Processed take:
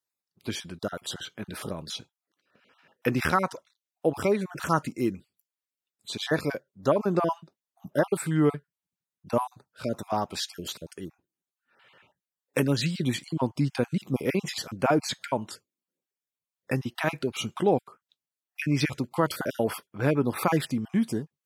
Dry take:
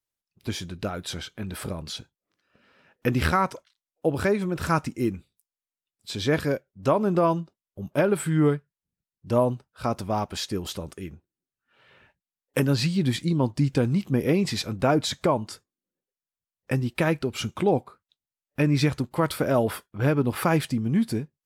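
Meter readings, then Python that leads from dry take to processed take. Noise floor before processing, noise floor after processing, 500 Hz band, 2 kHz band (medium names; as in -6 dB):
under -85 dBFS, under -85 dBFS, -2.5 dB, -1.5 dB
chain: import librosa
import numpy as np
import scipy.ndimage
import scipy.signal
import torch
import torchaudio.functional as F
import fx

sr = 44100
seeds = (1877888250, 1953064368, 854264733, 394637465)

y = fx.spec_dropout(x, sr, seeds[0], share_pct=25)
y = scipy.signal.sosfilt(scipy.signal.butter(2, 110.0, 'highpass', fs=sr, output='sos'), y)
y = fx.low_shelf(y, sr, hz=160.0, db=-4.5)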